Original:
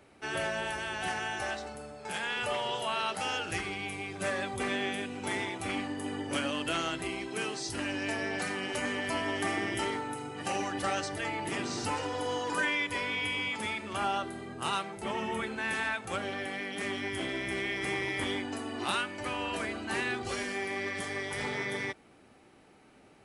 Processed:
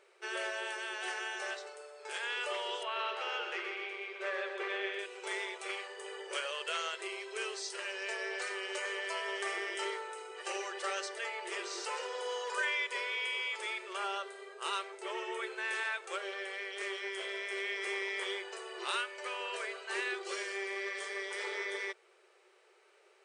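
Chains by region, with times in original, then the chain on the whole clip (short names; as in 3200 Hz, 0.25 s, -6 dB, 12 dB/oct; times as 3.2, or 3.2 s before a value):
2.83–4.99 BPF 140–3200 Hz + feedback echo 0.126 s, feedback 51%, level -7 dB
whole clip: bell 760 Hz -8.5 dB 0.46 oct; FFT band-pass 350–9700 Hz; gain -2.5 dB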